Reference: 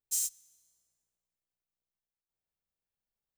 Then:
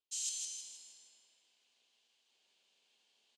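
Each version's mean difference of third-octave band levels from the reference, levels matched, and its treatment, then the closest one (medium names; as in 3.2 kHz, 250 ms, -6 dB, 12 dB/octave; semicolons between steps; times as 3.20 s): 9.5 dB: tilt EQ +4 dB/octave; reverse; compression 6:1, threshold -42 dBFS, peak gain reduction 25 dB; reverse; cabinet simulation 230–5600 Hz, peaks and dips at 240 Hz +7 dB, 420 Hz +5 dB, 1.3 kHz -9 dB, 1.9 kHz -6 dB, 3 kHz +7 dB, 5.5 kHz -7 dB; feedback delay 159 ms, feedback 43%, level -4.5 dB; trim +16.5 dB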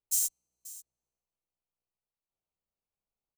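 3.0 dB: local Wiener filter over 25 samples; treble shelf 11 kHz +9 dB; on a send: delay 536 ms -18 dB; on the sum: tape noise reduction on one side only encoder only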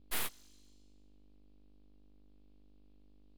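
14.5 dB: low-pass 7.5 kHz 12 dB/octave; high-order bell 3.3 kHz +15 dB 1.3 oct; hum 50 Hz, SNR 14 dB; full-wave rectifier; trim -1 dB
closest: second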